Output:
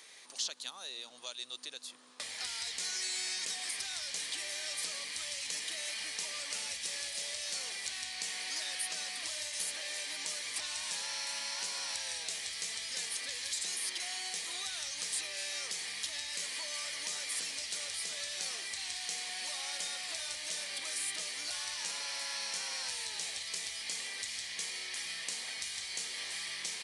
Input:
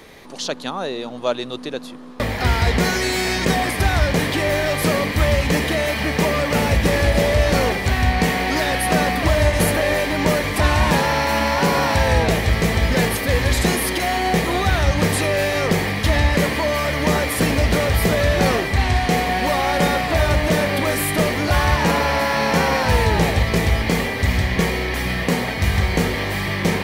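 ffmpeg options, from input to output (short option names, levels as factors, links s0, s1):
-filter_complex "[0:a]acrossover=split=3100|6800[s0][s1][s2];[s0]acompressor=threshold=0.0316:ratio=4[s3];[s1]acompressor=threshold=0.02:ratio=4[s4];[s2]acompressor=threshold=0.00794:ratio=4[s5];[s3][s4][s5]amix=inputs=3:normalize=0,aresample=22050,aresample=44100,aderivative"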